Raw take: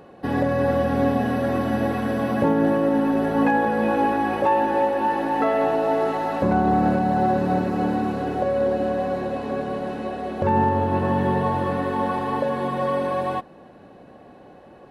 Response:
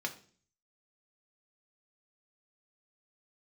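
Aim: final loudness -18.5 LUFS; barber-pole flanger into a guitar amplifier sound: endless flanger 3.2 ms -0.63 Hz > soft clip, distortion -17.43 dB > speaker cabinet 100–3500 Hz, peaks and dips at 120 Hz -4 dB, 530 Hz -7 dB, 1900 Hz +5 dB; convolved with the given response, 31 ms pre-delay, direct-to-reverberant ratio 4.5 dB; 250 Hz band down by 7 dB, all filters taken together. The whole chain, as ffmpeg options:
-filter_complex "[0:a]equalizer=f=250:t=o:g=-8,asplit=2[a][b];[1:a]atrim=start_sample=2205,adelay=31[c];[b][c]afir=irnorm=-1:irlink=0,volume=-7dB[d];[a][d]amix=inputs=2:normalize=0,asplit=2[e][f];[f]adelay=3.2,afreqshift=-0.63[g];[e][g]amix=inputs=2:normalize=1,asoftclip=threshold=-18dB,highpass=100,equalizer=f=120:t=q:w=4:g=-4,equalizer=f=530:t=q:w=4:g=-7,equalizer=f=1.9k:t=q:w=4:g=5,lowpass=f=3.5k:w=0.5412,lowpass=f=3.5k:w=1.3066,volume=10.5dB"

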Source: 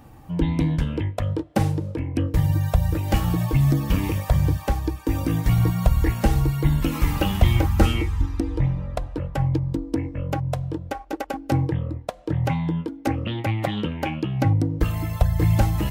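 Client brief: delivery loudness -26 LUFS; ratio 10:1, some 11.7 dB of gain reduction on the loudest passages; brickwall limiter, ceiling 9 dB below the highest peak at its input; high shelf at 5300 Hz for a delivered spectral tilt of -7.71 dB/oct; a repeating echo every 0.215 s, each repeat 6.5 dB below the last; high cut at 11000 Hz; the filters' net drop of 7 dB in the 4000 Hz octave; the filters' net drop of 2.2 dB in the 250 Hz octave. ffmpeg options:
-af "lowpass=11k,equalizer=f=250:t=o:g=-3.5,equalizer=f=4k:t=o:g=-8,highshelf=f=5.3k:g=-6.5,acompressor=threshold=-23dB:ratio=10,alimiter=limit=-21.5dB:level=0:latency=1,aecho=1:1:215|430|645|860|1075|1290:0.473|0.222|0.105|0.0491|0.0231|0.0109,volume=4.5dB"

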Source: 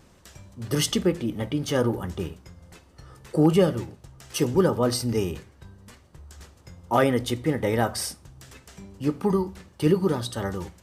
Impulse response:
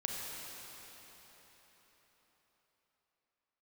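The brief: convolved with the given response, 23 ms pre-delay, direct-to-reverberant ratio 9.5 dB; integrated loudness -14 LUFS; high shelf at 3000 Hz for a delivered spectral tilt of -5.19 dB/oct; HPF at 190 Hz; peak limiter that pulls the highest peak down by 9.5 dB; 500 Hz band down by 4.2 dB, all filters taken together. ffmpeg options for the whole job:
-filter_complex "[0:a]highpass=190,equalizer=f=500:t=o:g=-5,highshelf=f=3k:g=-7.5,alimiter=limit=-20dB:level=0:latency=1,asplit=2[a][b];[1:a]atrim=start_sample=2205,adelay=23[c];[b][c]afir=irnorm=-1:irlink=0,volume=-12.5dB[d];[a][d]amix=inputs=2:normalize=0,volume=18dB"

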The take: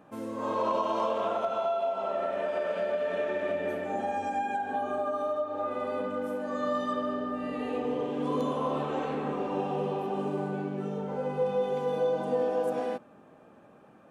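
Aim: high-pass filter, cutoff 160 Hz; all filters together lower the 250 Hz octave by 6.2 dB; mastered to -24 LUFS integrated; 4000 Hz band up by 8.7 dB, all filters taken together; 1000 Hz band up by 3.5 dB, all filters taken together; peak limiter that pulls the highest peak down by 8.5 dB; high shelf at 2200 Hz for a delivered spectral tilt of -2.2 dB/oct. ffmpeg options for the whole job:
-af "highpass=160,equalizer=f=250:t=o:g=-7,equalizer=f=1k:t=o:g=3,highshelf=f=2.2k:g=8.5,equalizer=f=4k:t=o:g=3.5,volume=8dB,alimiter=limit=-15dB:level=0:latency=1"

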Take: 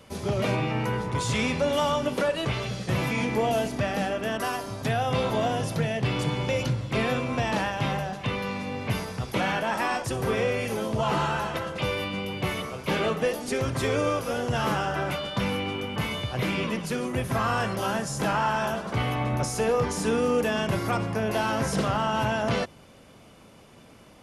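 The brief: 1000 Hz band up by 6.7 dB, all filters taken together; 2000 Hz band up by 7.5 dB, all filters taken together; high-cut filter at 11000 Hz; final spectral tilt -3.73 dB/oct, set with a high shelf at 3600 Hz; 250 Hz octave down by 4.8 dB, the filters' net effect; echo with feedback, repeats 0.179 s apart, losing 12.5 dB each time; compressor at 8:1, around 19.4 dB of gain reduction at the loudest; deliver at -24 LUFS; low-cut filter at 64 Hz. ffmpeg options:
-af "highpass=64,lowpass=11k,equalizer=f=250:t=o:g=-7,equalizer=f=1k:t=o:g=7,equalizer=f=2k:t=o:g=6.5,highshelf=f=3.6k:g=3.5,acompressor=threshold=-37dB:ratio=8,aecho=1:1:179|358|537:0.237|0.0569|0.0137,volume=15dB"

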